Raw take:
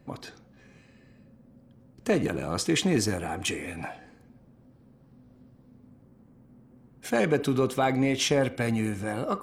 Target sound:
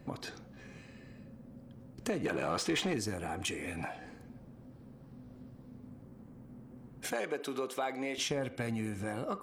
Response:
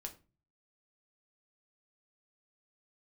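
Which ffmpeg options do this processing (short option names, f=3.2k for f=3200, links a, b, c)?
-filter_complex "[0:a]asettb=1/sr,asplit=3[a][b][c];[a]atrim=end=7.124[d];[b]atrim=start=7.12:end=8.18,asetpts=PTS-STARTPTS,afade=t=in:d=0.004:c=qsin,afade=t=out:st=1.056:d=0.004:c=qsin,highpass=400[e];[c]atrim=start=8.176[f];[d][e]acrossfade=d=0.004:c1=hsin:c2=qsin[g];[g][f]acrossfade=d=0.004:c1=qsin:c2=hsin,acompressor=threshold=-42dB:ratio=2.5,asettb=1/sr,asplit=3[h][i][j];[h]atrim=end=2.244[k];[i]atrim=start=2.24:end=2.94,asetpts=PTS-STARTPTS,afade=t=in:d=0.004:c=qsin,afade=t=out:st=0.696:d=0.004:c=qsin,asplit=2[l][m];[m]highpass=f=720:p=1,volume=17dB,asoftclip=type=tanh:threshold=-24.5dB[n];[l][n]amix=inputs=2:normalize=0,lowpass=f=2.9k:p=1,volume=-6dB[o];[j]atrim=start=2.936[p];[k][o]acrossfade=d=0.004:c1=hsin:c2=qsin[q];[q][p]acrossfade=d=0.004:c1=qsin:c2=hsin,volume=3.5dB"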